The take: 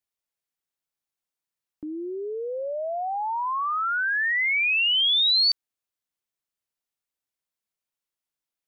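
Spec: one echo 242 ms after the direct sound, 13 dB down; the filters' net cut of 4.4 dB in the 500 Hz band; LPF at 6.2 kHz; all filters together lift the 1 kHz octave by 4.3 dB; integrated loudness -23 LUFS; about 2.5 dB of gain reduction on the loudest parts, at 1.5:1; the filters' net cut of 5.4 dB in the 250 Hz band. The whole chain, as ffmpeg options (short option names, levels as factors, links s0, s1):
-af "lowpass=6200,equalizer=f=250:t=o:g=-4.5,equalizer=f=500:t=o:g=-7.5,equalizer=f=1000:t=o:g=7.5,acompressor=threshold=0.0447:ratio=1.5,aecho=1:1:242:0.224"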